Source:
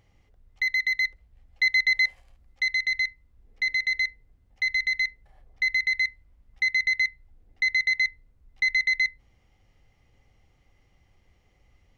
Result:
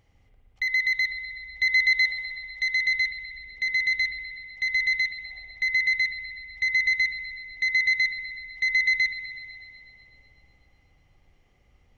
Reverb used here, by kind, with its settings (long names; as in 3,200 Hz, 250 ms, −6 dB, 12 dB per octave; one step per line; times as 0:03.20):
spring reverb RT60 2.6 s, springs 59 ms, chirp 75 ms, DRR 1.5 dB
level −1.5 dB